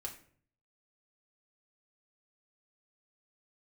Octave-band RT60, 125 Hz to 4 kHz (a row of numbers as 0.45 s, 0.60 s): 0.85 s, 0.65 s, 0.60 s, 0.45 s, 0.45 s, 0.35 s